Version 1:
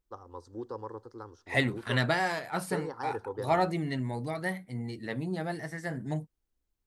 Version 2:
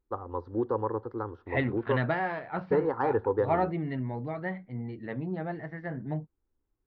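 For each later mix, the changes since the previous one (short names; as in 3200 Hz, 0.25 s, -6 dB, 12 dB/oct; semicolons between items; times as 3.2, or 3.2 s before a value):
first voice +10.5 dB; master: add Gaussian blur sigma 3.4 samples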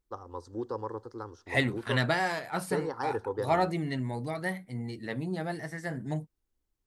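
first voice -6.5 dB; master: remove Gaussian blur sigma 3.4 samples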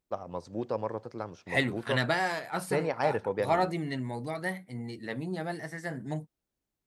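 first voice: remove fixed phaser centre 640 Hz, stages 6; master: add HPF 130 Hz 6 dB/oct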